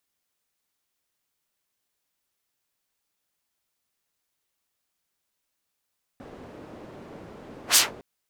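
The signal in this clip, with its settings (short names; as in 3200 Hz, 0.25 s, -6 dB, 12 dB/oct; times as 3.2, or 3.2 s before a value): whoosh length 1.81 s, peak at 1.56, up 0.10 s, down 0.18 s, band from 360 Hz, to 7700 Hz, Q 0.82, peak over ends 29 dB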